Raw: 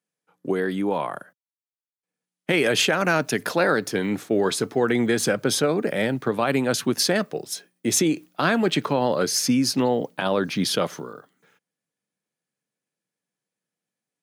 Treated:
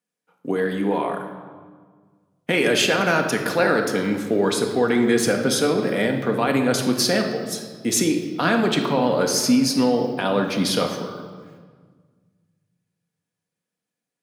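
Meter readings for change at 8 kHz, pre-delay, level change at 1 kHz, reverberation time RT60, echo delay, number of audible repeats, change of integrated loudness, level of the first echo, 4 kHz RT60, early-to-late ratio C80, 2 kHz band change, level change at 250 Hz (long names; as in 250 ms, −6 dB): +1.0 dB, 4 ms, +2.0 dB, 1.6 s, no echo audible, no echo audible, +2.0 dB, no echo audible, 1.2 s, 8.0 dB, +1.5 dB, +3.0 dB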